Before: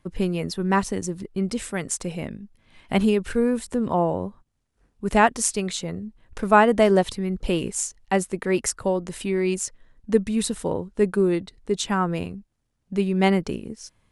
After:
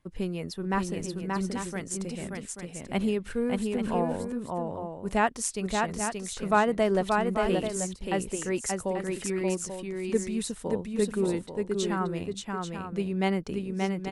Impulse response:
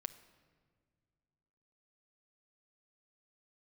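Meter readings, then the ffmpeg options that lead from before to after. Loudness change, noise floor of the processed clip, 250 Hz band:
-6.0 dB, -45 dBFS, -5.5 dB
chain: -af "aecho=1:1:579|837:0.668|0.376,volume=-7.5dB"

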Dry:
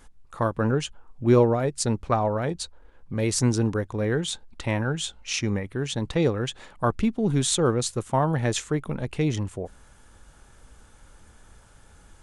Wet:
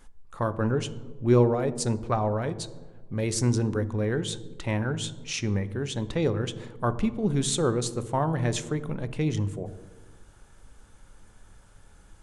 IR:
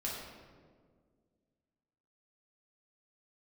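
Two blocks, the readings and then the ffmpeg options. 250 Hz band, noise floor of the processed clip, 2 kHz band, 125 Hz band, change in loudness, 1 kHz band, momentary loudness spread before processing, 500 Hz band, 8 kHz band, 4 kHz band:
-2.0 dB, -54 dBFS, -3.5 dB, -1.0 dB, -2.0 dB, -3.0 dB, 10 LU, -2.5 dB, -3.5 dB, -3.5 dB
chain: -filter_complex "[0:a]asplit=2[a][b];[1:a]atrim=start_sample=2205,asetrate=70560,aresample=44100,lowshelf=f=480:g=10[c];[b][c]afir=irnorm=-1:irlink=0,volume=-12dB[d];[a][d]amix=inputs=2:normalize=0,volume=-4.5dB"

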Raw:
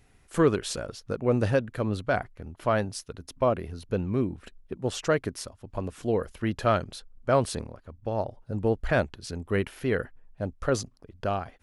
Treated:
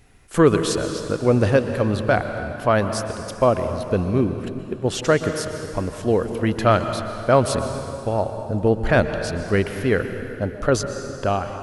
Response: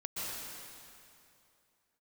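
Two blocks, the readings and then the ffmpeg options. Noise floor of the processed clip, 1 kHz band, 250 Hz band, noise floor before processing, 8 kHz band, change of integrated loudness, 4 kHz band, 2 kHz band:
-35 dBFS, +7.5 dB, +7.5 dB, -60 dBFS, +7.5 dB, +7.0 dB, +7.5 dB, +7.5 dB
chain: -filter_complex "[0:a]asplit=2[a][b];[1:a]atrim=start_sample=2205[c];[b][c]afir=irnorm=-1:irlink=0,volume=-8dB[d];[a][d]amix=inputs=2:normalize=0,volume=5dB"

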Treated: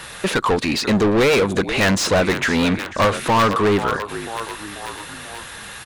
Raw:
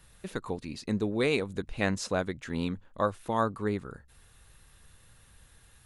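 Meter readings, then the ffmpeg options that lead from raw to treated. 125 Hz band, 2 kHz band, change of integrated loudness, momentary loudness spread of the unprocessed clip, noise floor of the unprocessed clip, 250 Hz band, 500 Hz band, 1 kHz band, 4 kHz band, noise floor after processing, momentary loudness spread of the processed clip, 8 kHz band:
+12.0 dB, +16.0 dB, +13.0 dB, 9 LU, -59 dBFS, +12.5 dB, +13.5 dB, +15.0 dB, +18.0 dB, -36 dBFS, 16 LU, +17.0 dB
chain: -filter_complex "[0:a]aeval=exprs='(mod(5.62*val(0)+1,2)-1)/5.62':c=same,asplit=5[a][b][c][d][e];[b]adelay=489,afreqshift=-52,volume=-22.5dB[f];[c]adelay=978,afreqshift=-104,volume=-27.2dB[g];[d]adelay=1467,afreqshift=-156,volume=-32dB[h];[e]adelay=1956,afreqshift=-208,volume=-36.7dB[i];[a][f][g][h][i]amix=inputs=5:normalize=0,asplit=2[j][k];[k]highpass=f=720:p=1,volume=31dB,asoftclip=type=tanh:threshold=-14.5dB[l];[j][l]amix=inputs=2:normalize=0,lowpass=f=3.4k:p=1,volume=-6dB,volume=6dB"

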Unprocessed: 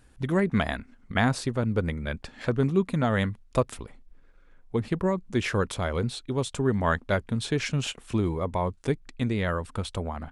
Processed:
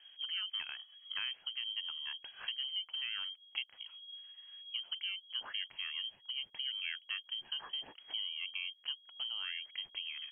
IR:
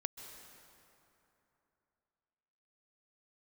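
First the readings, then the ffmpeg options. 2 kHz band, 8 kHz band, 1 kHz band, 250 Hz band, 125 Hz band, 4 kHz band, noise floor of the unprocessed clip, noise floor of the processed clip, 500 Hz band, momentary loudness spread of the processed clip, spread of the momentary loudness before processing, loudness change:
-10.5 dB, under -40 dB, -25.0 dB, under -40 dB, under -40 dB, +4.5 dB, -56 dBFS, -64 dBFS, under -40 dB, 6 LU, 8 LU, -11.0 dB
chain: -af "highshelf=f=2.3k:g=-9.5,acompressor=threshold=-45dB:ratio=2.5,lowpass=f=2.8k:t=q:w=0.5098,lowpass=f=2.8k:t=q:w=0.6013,lowpass=f=2.8k:t=q:w=0.9,lowpass=f=2.8k:t=q:w=2.563,afreqshift=-3300"

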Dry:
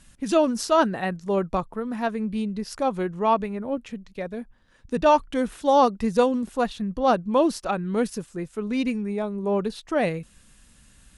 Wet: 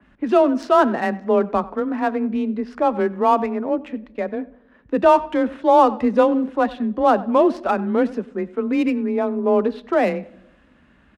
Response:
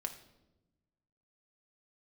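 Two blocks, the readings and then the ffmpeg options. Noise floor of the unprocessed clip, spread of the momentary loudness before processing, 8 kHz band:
-56 dBFS, 12 LU, under -10 dB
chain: -filter_complex "[0:a]acrossover=split=160 2500:gain=0.2 1 0.0708[a][b][c];[a][b][c]amix=inputs=3:normalize=0,asplit=2[d][e];[e]adelay=95,lowpass=f=5k:p=1,volume=-21dB,asplit=2[f][g];[g]adelay=95,lowpass=f=5k:p=1,volume=0.33[h];[d][f][h]amix=inputs=3:normalize=0,asplit=2[i][j];[j]alimiter=limit=-18.5dB:level=0:latency=1:release=21,volume=-2dB[k];[i][k]amix=inputs=2:normalize=0,adynamicsmooth=sensitivity=8:basefreq=4.6k,afreqshift=24,asplit=2[l][m];[1:a]atrim=start_sample=2205[n];[m][n]afir=irnorm=-1:irlink=0,volume=-9.5dB[o];[l][o]amix=inputs=2:normalize=0,adynamicequalizer=threshold=0.0158:dfrequency=3000:dqfactor=0.7:tfrequency=3000:tqfactor=0.7:attack=5:release=100:ratio=0.375:range=3:mode=boostabove:tftype=highshelf"

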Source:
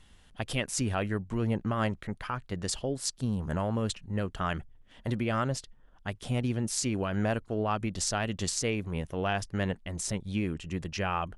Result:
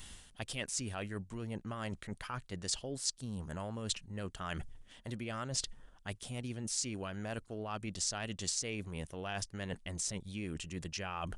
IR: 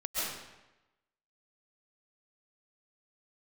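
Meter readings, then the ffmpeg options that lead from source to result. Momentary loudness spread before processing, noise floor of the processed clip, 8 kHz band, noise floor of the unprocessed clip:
6 LU, -61 dBFS, -2.5 dB, -58 dBFS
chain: -filter_complex "[0:a]aresample=22050,aresample=44100,areverse,acompressor=threshold=-45dB:ratio=5,areverse,aemphasis=mode=production:type=75kf,acrossover=split=7200[a][b];[b]acompressor=threshold=-52dB:ratio=4:attack=1:release=60[c];[a][c]amix=inputs=2:normalize=0,volume=5dB"

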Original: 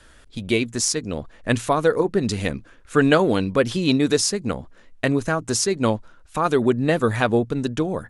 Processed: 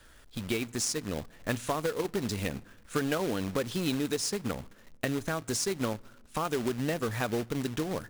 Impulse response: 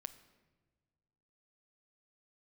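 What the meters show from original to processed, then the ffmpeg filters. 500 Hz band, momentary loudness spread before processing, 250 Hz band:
-11.5 dB, 11 LU, -11.0 dB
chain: -filter_complex "[0:a]acompressor=threshold=-22dB:ratio=4,acrusher=bits=2:mode=log:mix=0:aa=0.000001,asplit=2[a][b];[1:a]atrim=start_sample=2205,asetrate=42777,aresample=44100[c];[b][c]afir=irnorm=-1:irlink=0,volume=-7.5dB[d];[a][d]amix=inputs=2:normalize=0,volume=-8dB"

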